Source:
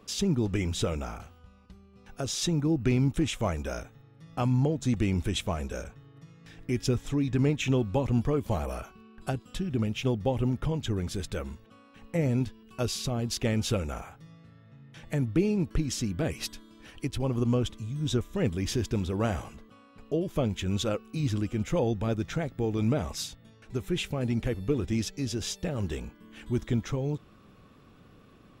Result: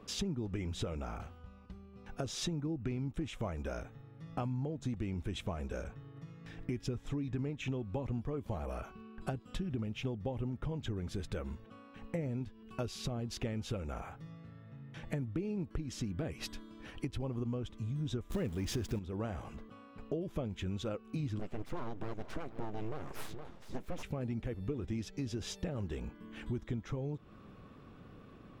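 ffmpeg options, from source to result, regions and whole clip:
-filter_complex "[0:a]asettb=1/sr,asplit=3[s0][s1][s2];[s0]atrim=end=18.304[s3];[s1]atrim=start=18.3:end=18.99,asetpts=PTS-STARTPTS,afade=t=in:d=0.004:c=qsin,afade=t=out:st=0.686:d=0.004:c=qsin,aeval=exprs='val(0)+0.5*0.0119*sgn(val(0))':c=same,highshelf=f=6500:g=9.5,acontrast=80[s4];[s2]atrim=start=18.986[s5];[s3][s4]acrossfade=d=0.004:c1=hsin:c2=qsin[s6];[s6][s5]acrossfade=d=0.004:c1=qsin:c2=hsin,asettb=1/sr,asplit=3[s7][s8][s9];[s7]atrim=end=21.394[s10];[s8]atrim=start=21.39:end=24.03,asetpts=PTS-STARTPTS,afade=t=in:d=0.004:c=qsin,afade=t=out:st=2.636:d=0.004:c=qsin,aecho=1:1:466:0.106,atrim=end_sample=116424,aeval=exprs='abs(val(0))':c=same[s11];[s9]atrim=start=24.026[s12];[s10][s11]acrossfade=d=0.004:c1=hsin:c2=qsin[s13];[s13][s12]acrossfade=d=0.004:c1=qsin:c2=hsin,highshelf=f=3700:g=-11,acompressor=threshold=0.0158:ratio=6,volume=1.19"

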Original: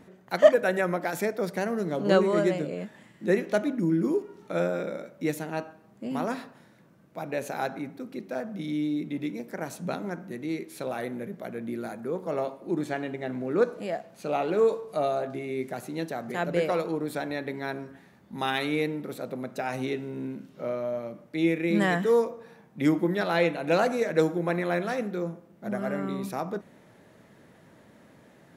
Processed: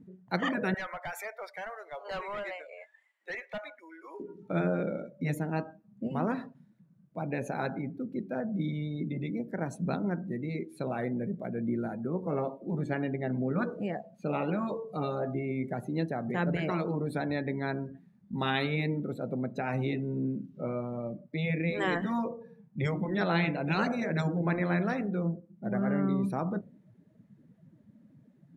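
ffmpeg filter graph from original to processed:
-filter_complex "[0:a]asettb=1/sr,asplit=3[s0][s1][s2];[s0]atrim=end=0.744[s3];[s1]atrim=start=0.74:end=4.2,asetpts=PTS-STARTPTS,afade=t=in:d=0.004:c=qsin,afade=t=out:st=3.456:d=0.004:c=qsin,highpass=f=720:w=0.5412,highpass=f=720:w=1.3066,equalizer=f=2200:t=o:w=0.27:g=4.5,asoftclip=type=hard:threshold=0.0237[s4];[s2]atrim=start=4.196[s5];[s3][s4]acrossfade=d=0.004:c1=hsin:c2=qsin[s6];[s6][s5]acrossfade=d=0.004:c1=qsin:c2=hsin,afftdn=nr=20:nf=-43,afftfilt=real='re*lt(hypot(re,im),0.316)':imag='im*lt(hypot(re,im),0.316)':win_size=1024:overlap=0.75,bass=f=250:g=9,treble=f=4000:g=-1,volume=0.841"

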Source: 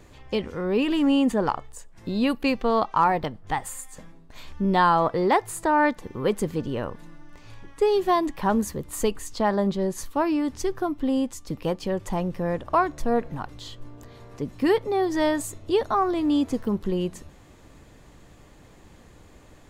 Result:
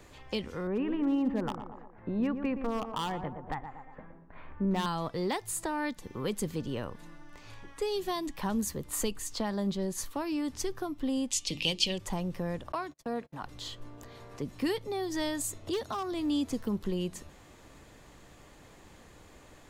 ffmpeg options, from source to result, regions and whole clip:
-filter_complex "[0:a]asettb=1/sr,asplit=3[s0][s1][s2];[s0]atrim=end=0.674[s3];[s1]atrim=start=0.67:end=4.86,asetpts=PTS-STARTPTS,afade=t=in:d=0.004:c=qsin,afade=t=out:st=4.186:d=0.004:c=qsin,lowpass=f=1900:w=0.5412,lowpass=f=1900:w=1.3066,volume=5.96,asoftclip=hard,volume=0.168,asplit=2[s4][s5];[s5]adelay=118,lowpass=f=1100:p=1,volume=0.376,asplit=2[s6][s7];[s7]adelay=118,lowpass=f=1100:p=1,volume=0.46,asplit=2[s8][s9];[s9]adelay=118,lowpass=f=1100:p=1,volume=0.46,asplit=2[s10][s11];[s11]adelay=118,lowpass=f=1100:p=1,volume=0.46,asplit=2[s12][s13];[s13]adelay=118,lowpass=f=1100:p=1,volume=0.46[s14];[s4][s6][s8][s10][s12][s14]amix=inputs=6:normalize=0,atrim=end_sample=184779[s15];[s2]atrim=start=4.856[s16];[s3][s15]acrossfade=d=0.004:c1=hsin:c2=qsin[s17];[s17][s16]acrossfade=d=0.004:c1=qsin:c2=hsin,asettb=1/sr,asplit=3[s18][s19][s20];[s18]atrim=end=11.314[s21];[s19]atrim=start=11.31:end=11.98,asetpts=PTS-STARTPTS,afade=t=in:d=0.004:c=qsin,afade=t=out:st=0.666:d=0.004:c=qsin,lowpass=7800,highshelf=f=2000:t=q:w=3:g=11.5,bandreject=f=50:t=h:w=6,bandreject=f=100:t=h:w=6,bandreject=f=150:t=h:w=6,bandreject=f=200:t=h:w=6,bandreject=f=250:t=h:w=6,bandreject=f=300:t=h:w=6,bandreject=f=350:t=h:w=6,bandreject=f=400:t=h:w=6[s22];[s20]atrim=start=11.976[s23];[s21][s22]acrossfade=d=0.004:c1=hsin:c2=qsin[s24];[s24][s23]acrossfade=d=0.004:c1=qsin:c2=hsin,asettb=1/sr,asplit=3[s25][s26][s27];[s25]atrim=end=12.724[s28];[s26]atrim=start=12.72:end=13.43,asetpts=PTS-STARTPTS,afade=t=in:d=0.004:c=qsin,afade=t=out:st=0.706:d=0.004:c=qsin,highpass=f=260:p=1,agate=range=0.0178:threshold=0.01:ratio=16:release=100:detection=peak,highshelf=f=5400:g=-4.5[s29];[s27]atrim=start=13.426[s30];[s28][s29]acrossfade=d=0.004:c1=hsin:c2=qsin[s31];[s31][s30]acrossfade=d=0.004:c1=qsin:c2=hsin,asettb=1/sr,asplit=3[s32][s33][s34];[s32]atrim=end=15.674[s35];[s33]atrim=start=15.67:end=16.12,asetpts=PTS-STARTPTS,afade=t=in:d=0.004:c=qsin,afade=t=out:st=0.446:d=0.004:c=qsin,highpass=72,acompressor=mode=upward:threshold=0.0355:ratio=2.5:attack=3.2:release=140:knee=2.83:detection=peak,volume=7.08,asoftclip=hard,volume=0.141[s36];[s34]atrim=start=16.116[s37];[s35][s36]acrossfade=d=0.004:c1=hsin:c2=qsin[s38];[s38][s37]acrossfade=d=0.004:c1=qsin:c2=hsin,lowshelf=f=370:g=-6,acrossover=split=260|3000[s39][s40][s41];[s40]acompressor=threshold=0.0126:ratio=3[s42];[s39][s42][s41]amix=inputs=3:normalize=0"

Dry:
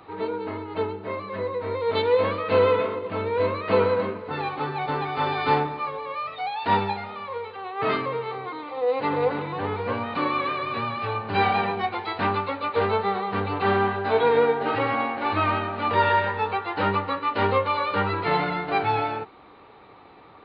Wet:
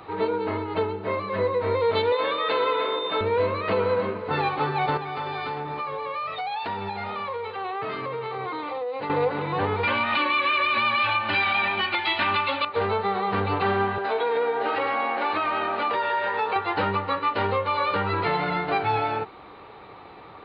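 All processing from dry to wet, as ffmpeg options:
-filter_complex "[0:a]asettb=1/sr,asplit=3[s0][s1][s2];[s0]atrim=end=2.124[s3];[s1]atrim=start=2.12:end=3.21,asetpts=PTS-STARTPTS,afade=t=in:d=0.004:c=qsin,afade=t=out:st=1.086:d=0.004:c=qsin,highpass=380,aecho=1:1:6.9:0.51,atrim=end_sample=48069,aeval=exprs='val(0)+0.0158*sin(2*PI*3600*n/s)':c=same[s4];[s2]atrim=start=3.206[s5];[s3][s4]acrossfade=d=0.004:c1=hsin:c2=qsin[s6];[s6][s5]acrossfade=d=0.004:c1=qsin:c2=hsin,asettb=1/sr,asplit=3[s7][s8][s9];[s7]atrim=end=4.974[s10];[s8]atrim=start=4.97:end=9.1,asetpts=PTS-STARTPTS,afade=t=in:d=0.004:c=qsin,afade=t=out:st=4.126:d=0.004:c=qsin,highpass=54,acompressor=threshold=0.0282:ratio=16:attack=3.2:release=140:knee=1:detection=peak[s11];[s9]atrim=start=9.096[s12];[s10][s11]acrossfade=d=0.004:c1=hsin:c2=qsin[s13];[s13][s12]acrossfade=d=0.004:c1=qsin:c2=hsin,asettb=1/sr,asplit=3[s14][s15][s16];[s14]atrim=end=9.834[s17];[s15]atrim=start=9.83:end=12.65,asetpts=PTS-STARTPTS,afade=t=in:d=0.004:c=qsin,afade=t=out:st=2.816:d=0.004:c=qsin,equalizer=f=2900:w=0.69:g=14.5,bandreject=f=490:w=10,aecho=1:1:3.4:0.96,atrim=end_sample=124362[s18];[s16]atrim=start=12.646[s19];[s17][s18]acrossfade=d=0.004:c1=hsin:c2=qsin[s20];[s20][s19]acrossfade=d=0.004:c1=qsin:c2=hsin,asettb=1/sr,asplit=3[s21][s22][s23];[s21]atrim=end=13.984[s24];[s22]atrim=start=13.98:end=16.56,asetpts=PTS-STARTPTS,afade=t=in:d=0.004:c=qsin,afade=t=out:st=2.576:d=0.004:c=qsin,highpass=310,acompressor=threshold=0.0501:ratio=5:attack=3.2:release=140:knee=1:detection=peak[s25];[s23]atrim=start=16.556[s26];[s24][s25]acrossfade=d=0.004:c1=hsin:c2=qsin[s27];[s27][s26]acrossfade=d=0.004:c1=qsin:c2=hsin,alimiter=limit=0.106:level=0:latency=1:release=308,equalizer=f=260:t=o:w=0.39:g=-4.5,volume=1.78"

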